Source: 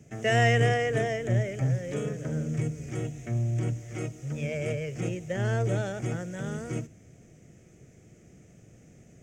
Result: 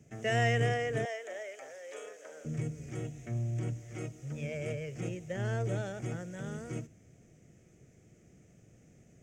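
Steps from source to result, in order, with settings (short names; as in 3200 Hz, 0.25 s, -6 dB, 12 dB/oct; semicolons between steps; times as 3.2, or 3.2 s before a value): 1.05–2.45 HPF 510 Hz 24 dB/oct; gain -6 dB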